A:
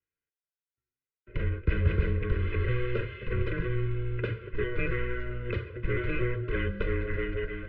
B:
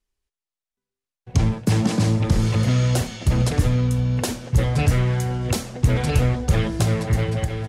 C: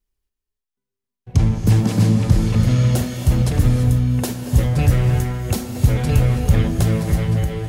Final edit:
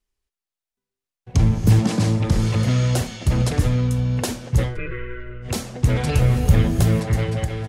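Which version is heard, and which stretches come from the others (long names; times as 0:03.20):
B
0:01.38–0:01.79: punch in from C
0:04.70–0:05.49: punch in from A, crossfade 0.16 s
0:06.21–0:07.00: punch in from C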